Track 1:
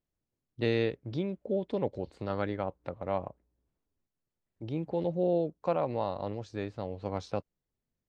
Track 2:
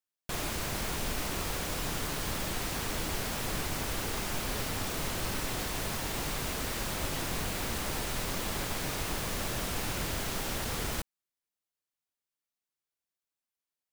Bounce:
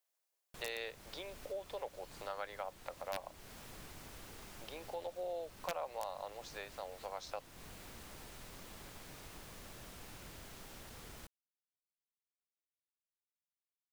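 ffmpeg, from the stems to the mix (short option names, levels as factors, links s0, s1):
-filter_complex "[0:a]highpass=f=590:w=0.5412,highpass=f=590:w=1.3066,highshelf=f=5700:g=8.5,volume=1.41[s0];[1:a]adelay=250,volume=0.126[s1];[s0][s1]amix=inputs=2:normalize=0,aeval=exprs='(mod(8.41*val(0)+1,2)-1)/8.41':c=same,acompressor=threshold=0.00501:ratio=2"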